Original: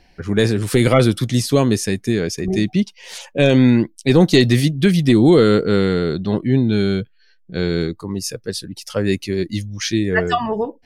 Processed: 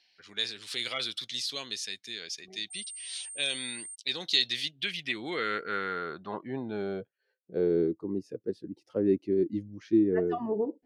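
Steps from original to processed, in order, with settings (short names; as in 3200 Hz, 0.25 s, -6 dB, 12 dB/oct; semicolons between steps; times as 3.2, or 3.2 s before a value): 2.7–3.94 whine 8700 Hz -23 dBFS; band-pass sweep 3800 Hz -> 330 Hz, 4.48–8; gain -2 dB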